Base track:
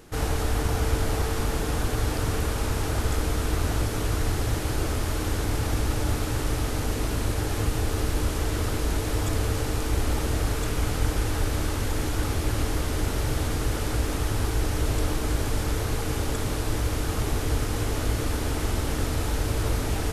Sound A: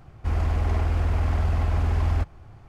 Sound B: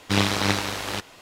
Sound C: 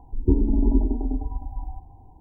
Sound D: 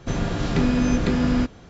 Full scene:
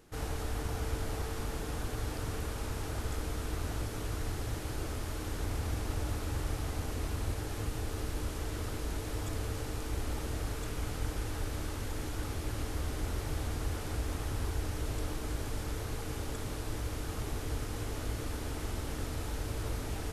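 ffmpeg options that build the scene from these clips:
-filter_complex "[1:a]asplit=2[a][b];[0:a]volume=-10.5dB[c];[a]atrim=end=2.68,asetpts=PTS-STARTPTS,volume=-16.5dB,afade=t=in:d=0.004:c=hsin,afade=t=out:st=2.676:d=0.004:c=hsin,adelay=5110[d];[b]atrim=end=2.68,asetpts=PTS-STARTPTS,volume=-17.5dB,afade=t=in:d=0.004:c=hsin,afade=t=out:st=2.676:d=0.004:c=hsin,adelay=12470[e];[c][d][e]amix=inputs=3:normalize=0"

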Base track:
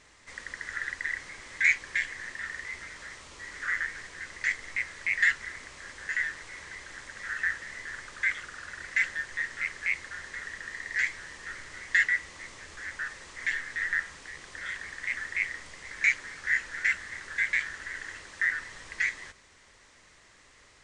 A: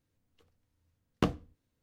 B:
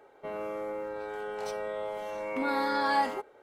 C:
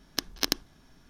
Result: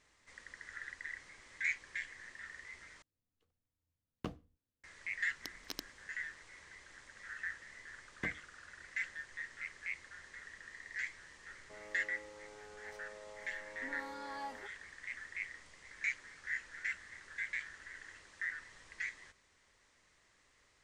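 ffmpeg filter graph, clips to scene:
-filter_complex "[1:a]asplit=2[a][b];[0:a]volume=-12.5dB,asplit=2[c][d];[c]atrim=end=3.024[e];[a]atrim=end=1.82,asetpts=PTS-STARTPTS,volume=-14dB[f];[d]atrim=start=4.836[g];[3:a]atrim=end=1.09,asetpts=PTS-STARTPTS,volume=-17dB,afade=t=in:d=0.004:c=hsin,afade=t=out:st=1.086:d=0.004:c=hsin,adelay=5270[h];[b]atrim=end=1.82,asetpts=PTS-STARTPTS,volume=-16.5dB,afade=t=in:d=0.004:c=hsin,afade=t=out:st=1.816:d=0.004:c=hsin,adelay=7010[i];[2:a]atrim=end=3.42,asetpts=PTS-STARTPTS,volume=-17.5dB,afade=t=in:d=0.004:c=hsin,afade=t=out:st=3.416:d=0.004:c=hsin,adelay=505386S[j];[e][f]acrossfade=d=0.004:c1=hsin:c2=hsin[k];[k][g]acrossfade=d=0.004:c1=hsin:c2=hsin[l];[l][h][i][j]amix=inputs=4:normalize=0"

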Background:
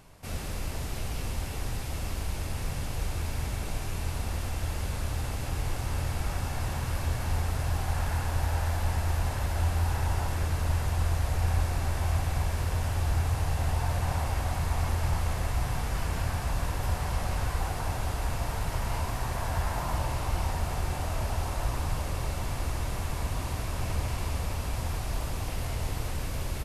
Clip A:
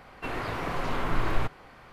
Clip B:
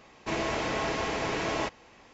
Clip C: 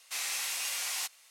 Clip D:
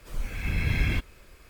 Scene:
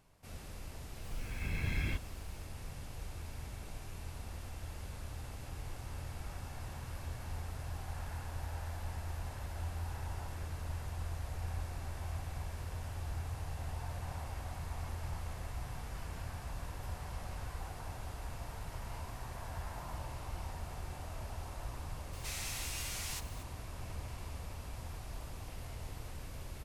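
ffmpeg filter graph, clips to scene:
-filter_complex "[0:a]volume=-13dB[a];[3:a]aeval=exprs='val(0)+0.5*0.00708*sgn(val(0))':c=same[b];[4:a]atrim=end=1.49,asetpts=PTS-STARTPTS,volume=-9.5dB,afade=t=in:d=0.004:c=hsin,afade=t=out:st=1.486:d=0.004:c=hsin,adelay=970[c];[b]atrim=end=1.3,asetpts=PTS-STARTPTS,volume=-9dB,afade=t=in:d=0.004:c=hsin,afade=t=out:st=1.296:d=0.004:c=hsin,adelay=22130[d];[a][c][d]amix=inputs=3:normalize=0"

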